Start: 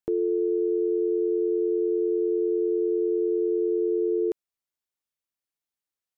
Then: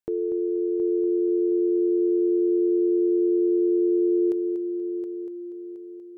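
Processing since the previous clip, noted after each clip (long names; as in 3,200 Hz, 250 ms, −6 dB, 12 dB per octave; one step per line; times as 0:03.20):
echo machine with several playback heads 240 ms, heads first and third, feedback 55%, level −10 dB
level −1.5 dB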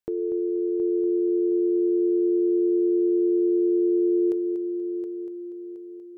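hum removal 436.6 Hz, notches 5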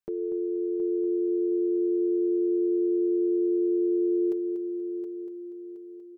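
comb filter 5.1 ms
level −5.5 dB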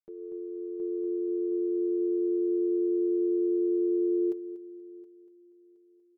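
expander for the loud parts 2.5 to 1, over −35 dBFS
level −1.5 dB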